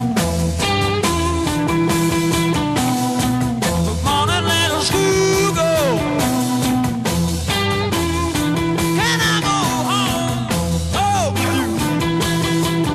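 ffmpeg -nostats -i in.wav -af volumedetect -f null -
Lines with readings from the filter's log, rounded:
mean_volume: -17.4 dB
max_volume: -5.4 dB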